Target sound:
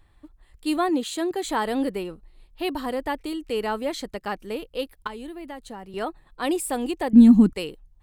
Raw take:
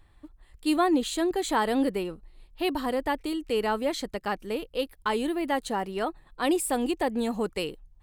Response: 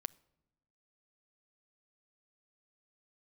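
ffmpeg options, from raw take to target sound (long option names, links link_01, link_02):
-filter_complex "[0:a]asettb=1/sr,asplit=3[link_01][link_02][link_03];[link_01]atrim=end=0.894[link_04];[link_02]atrim=start=0.89:end=1.44,asetpts=PTS-STARTPTS,afade=type=in:duration=0.004:curve=qsin,afade=type=out:start_time=0.546:duration=0.004:curve=qsin,highpass=93[link_05];[link_03]atrim=start=1.436[link_06];[link_04][link_05]acrossfade=duration=0.004:curve1=hsin:curve2=qsin[link_07];[link_07][link_06]acrossfade=duration=0.004:curve1=qsin:curve2=hsin,asettb=1/sr,asplit=3[link_08][link_09][link_10];[link_08]atrim=end=5.074[link_11];[link_09]atrim=start=5.07:end=5.94,asetpts=PTS-STARTPTS,afade=type=in:duration=0.004:curve=qsin,afade=type=out:start_time=0.866:duration=0.004:curve=qsin,acrossover=split=150[link_12][link_13];[link_13]acompressor=threshold=-39dB:ratio=3[link_14];[link_12][link_14]amix=inputs=2:normalize=0[link_15];[link_10]atrim=start=5.936[link_16];[link_11][link_15]acrossfade=duration=0.004:curve1=hsin:curve2=qsin[link_17];[link_17][link_16]acrossfade=duration=0.004:curve1=qsin:curve2=hsin,asettb=1/sr,asplit=3[link_18][link_19][link_20];[link_18]atrim=end=7.134[link_21];[link_19]atrim=start=7.13:end=7.53,asetpts=PTS-STARTPTS,afade=type=in:duration=0.004:curve=qsin,afade=type=out:start_time=0.396:duration=0.004:curve=qsin,lowshelf=frequency=370:width_type=q:width=3:gain=12[link_22];[link_20]atrim=start=7.526[link_23];[link_21][link_22]acrossfade=duration=0.004:curve1=hsin:curve2=qsin[link_24];[link_24][link_23]acrossfade=duration=0.004:curve1=qsin:curve2=hsin"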